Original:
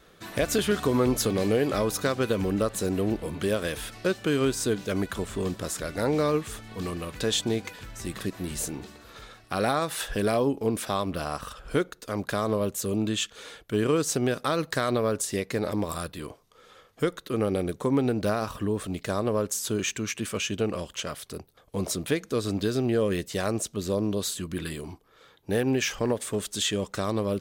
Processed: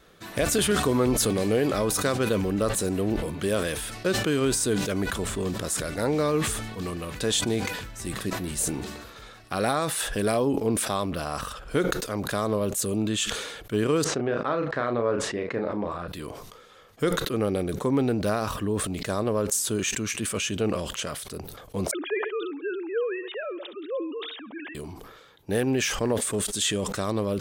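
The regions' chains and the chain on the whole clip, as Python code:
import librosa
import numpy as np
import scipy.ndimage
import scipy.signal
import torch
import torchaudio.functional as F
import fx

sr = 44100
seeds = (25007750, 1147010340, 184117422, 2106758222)

y = fx.chain(x, sr, fx.lowpass(hz=1800.0, slope=12),
    fx.low_shelf(hz=160.0, db=-9.5),
    fx.doubler(ms=34.0, db=-7.0), at=(14.04, 16.08))
y = fx.chain(y, sr, fx.sine_speech(),
    fx.highpass(hz=740.0, slope=6),
    fx.echo_feedback(ms=68, feedback_pct=51, wet_db=-23.5), at=(21.91, 24.75))
y = fx.dynamic_eq(y, sr, hz=9100.0, q=2.0, threshold_db=-49.0, ratio=4.0, max_db=7)
y = fx.sustainer(y, sr, db_per_s=43.0)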